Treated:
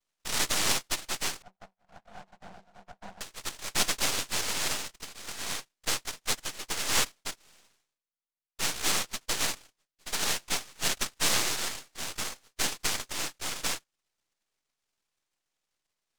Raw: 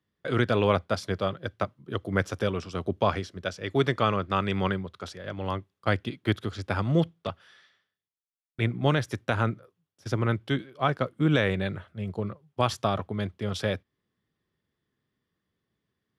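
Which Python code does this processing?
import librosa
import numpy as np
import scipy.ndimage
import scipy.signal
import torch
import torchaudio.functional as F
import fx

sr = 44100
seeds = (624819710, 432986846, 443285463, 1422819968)

y = fx.noise_vocoder(x, sr, seeds[0], bands=1)
y = fx.double_bandpass(y, sr, hz=370.0, octaves=1.9, at=(1.42, 3.21))
y = np.maximum(y, 0.0)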